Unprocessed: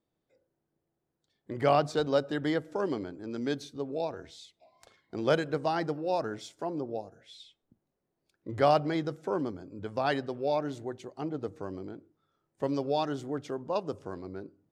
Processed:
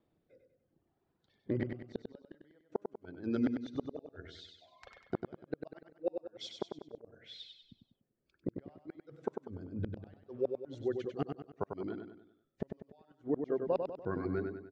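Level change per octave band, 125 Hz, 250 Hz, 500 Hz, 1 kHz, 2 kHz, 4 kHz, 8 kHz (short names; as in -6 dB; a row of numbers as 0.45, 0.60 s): -6.0 dB, -4.5 dB, -8.0 dB, -16.0 dB, -13.5 dB, -10.0 dB, n/a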